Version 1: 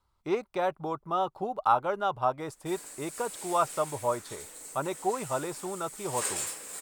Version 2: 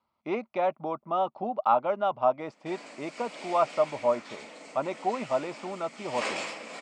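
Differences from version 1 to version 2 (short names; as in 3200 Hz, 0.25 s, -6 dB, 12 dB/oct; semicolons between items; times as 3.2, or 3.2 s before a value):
background +7.5 dB; master: add speaker cabinet 190–4500 Hz, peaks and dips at 230 Hz +9 dB, 410 Hz -5 dB, 630 Hz +7 dB, 1600 Hz -7 dB, 2300 Hz +5 dB, 3800 Hz -6 dB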